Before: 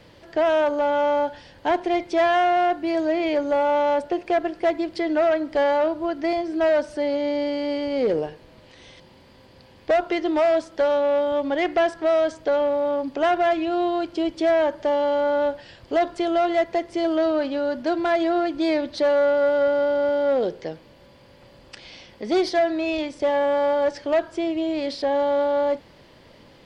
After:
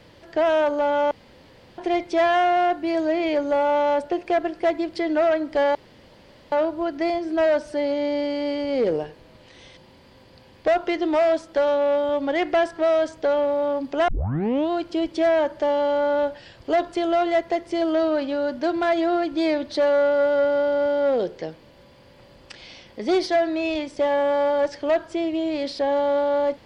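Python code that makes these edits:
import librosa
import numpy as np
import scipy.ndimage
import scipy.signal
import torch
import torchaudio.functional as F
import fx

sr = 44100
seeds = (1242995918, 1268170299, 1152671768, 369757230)

y = fx.edit(x, sr, fx.room_tone_fill(start_s=1.11, length_s=0.67),
    fx.insert_room_tone(at_s=5.75, length_s=0.77),
    fx.tape_start(start_s=13.31, length_s=0.62), tone=tone)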